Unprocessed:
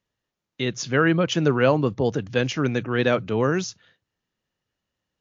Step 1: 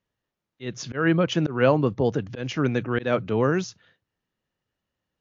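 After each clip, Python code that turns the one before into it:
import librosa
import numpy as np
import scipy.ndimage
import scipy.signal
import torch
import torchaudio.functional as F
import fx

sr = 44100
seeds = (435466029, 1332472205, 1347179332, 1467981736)

y = fx.high_shelf(x, sr, hz=4100.0, db=-8.0)
y = fx.auto_swell(y, sr, attack_ms=163.0)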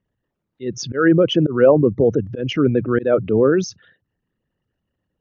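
y = fx.envelope_sharpen(x, sr, power=2.0)
y = y * 10.0 ** (7.0 / 20.0)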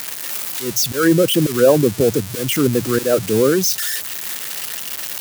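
y = x + 0.5 * 10.0 ** (-11.0 / 20.0) * np.diff(np.sign(x), prepend=np.sign(x[:1]))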